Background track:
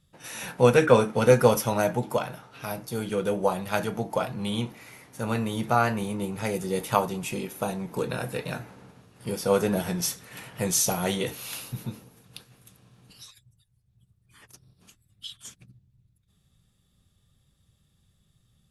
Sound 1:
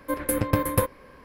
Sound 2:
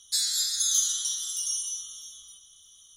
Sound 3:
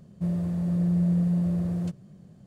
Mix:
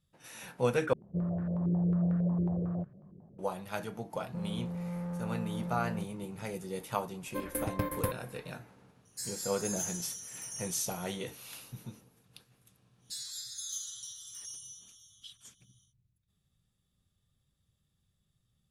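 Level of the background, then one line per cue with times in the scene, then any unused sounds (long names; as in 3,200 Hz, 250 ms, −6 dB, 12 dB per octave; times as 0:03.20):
background track −10.5 dB
0:00.93: overwrite with 3 −6 dB + low-pass on a step sequencer 11 Hz 380–1,500 Hz
0:04.13: mix in 3 −3 dB + soft clipping −33 dBFS
0:07.26: mix in 1 −10 dB
0:09.05: mix in 2 −9 dB + phaser with its sweep stopped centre 730 Hz, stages 8
0:12.98: mix in 2 −15 dB, fades 0.10 s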